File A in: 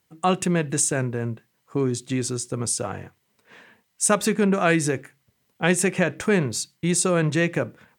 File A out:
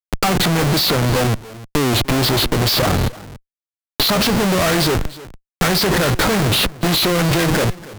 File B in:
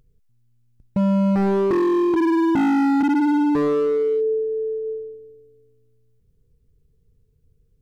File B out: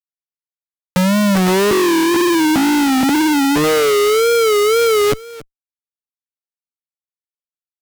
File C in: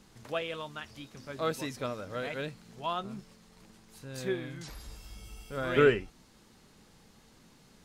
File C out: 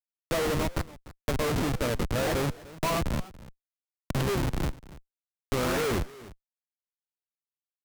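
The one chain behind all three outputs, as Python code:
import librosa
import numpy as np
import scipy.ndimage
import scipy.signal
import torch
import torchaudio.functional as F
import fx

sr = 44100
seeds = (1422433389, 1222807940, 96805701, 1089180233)

p1 = fx.freq_compress(x, sr, knee_hz=1200.0, ratio=1.5)
p2 = fx.high_shelf(p1, sr, hz=3500.0, db=3.0)
p3 = 10.0 ** (-22.0 / 20.0) * np.tanh(p2 / 10.0 ** (-22.0 / 20.0))
p4 = p2 + F.gain(torch.from_numpy(p3), -5.0).numpy()
p5 = fx.chorus_voices(p4, sr, voices=2, hz=0.38, base_ms=13, depth_ms=3.3, mix_pct=20)
p6 = fx.schmitt(p5, sr, flips_db=-34.0)
p7 = p6 + 10.0 ** (-21.5 / 20.0) * np.pad(p6, (int(291 * sr / 1000.0), 0))[:len(p6)]
p8 = fx.wow_flutter(p7, sr, seeds[0], rate_hz=2.1, depth_cents=110.0)
p9 = fx.band_squash(p8, sr, depth_pct=40)
y = F.gain(torch.from_numpy(p9), 7.5).numpy()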